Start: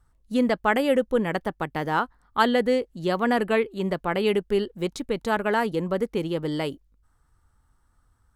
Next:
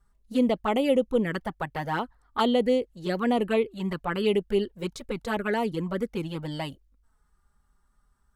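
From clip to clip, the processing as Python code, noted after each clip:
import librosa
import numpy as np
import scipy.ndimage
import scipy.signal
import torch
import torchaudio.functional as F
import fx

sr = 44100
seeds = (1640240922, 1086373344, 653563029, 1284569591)

y = fx.env_flanger(x, sr, rest_ms=5.1, full_db=-18.0)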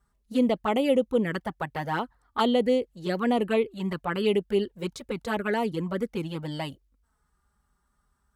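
y = scipy.signal.sosfilt(scipy.signal.butter(2, 50.0, 'highpass', fs=sr, output='sos'), x)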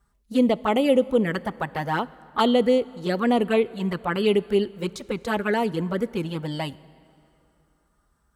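y = fx.rev_plate(x, sr, seeds[0], rt60_s=2.9, hf_ratio=0.75, predelay_ms=0, drr_db=19.5)
y = y * librosa.db_to_amplitude(3.5)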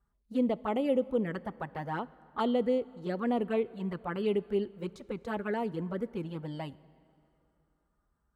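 y = fx.high_shelf(x, sr, hz=2400.0, db=-11.0)
y = y * librosa.db_to_amplitude(-8.5)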